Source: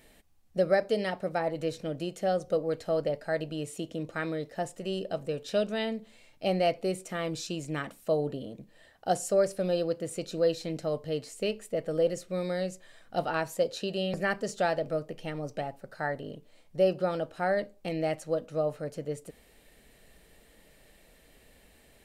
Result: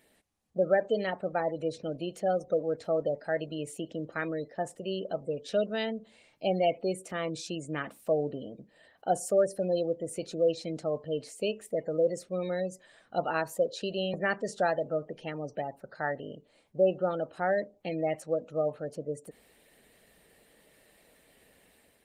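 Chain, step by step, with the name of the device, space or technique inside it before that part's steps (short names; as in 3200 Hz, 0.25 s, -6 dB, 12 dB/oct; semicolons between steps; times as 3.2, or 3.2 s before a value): 3.58–5.13 expander -42 dBFS; noise-suppressed video call (HPF 170 Hz 6 dB/oct; spectral gate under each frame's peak -25 dB strong; AGC gain up to 5 dB; gain -4.5 dB; Opus 24 kbps 48000 Hz)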